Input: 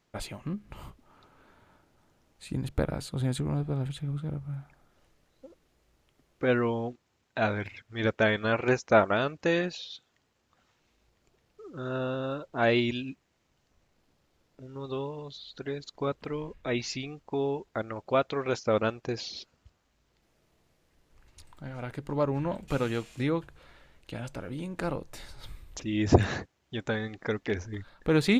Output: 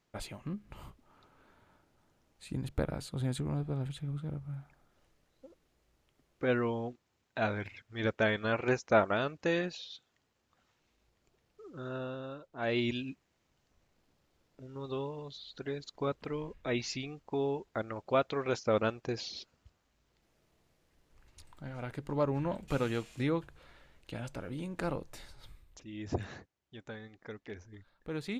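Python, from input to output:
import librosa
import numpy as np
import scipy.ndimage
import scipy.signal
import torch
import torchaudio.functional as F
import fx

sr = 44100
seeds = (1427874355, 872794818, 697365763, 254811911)

y = fx.gain(x, sr, db=fx.line((11.71, -4.5), (12.56, -12.5), (12.87, -3.0), (25.06, -3.0), (25.84, -14.5)))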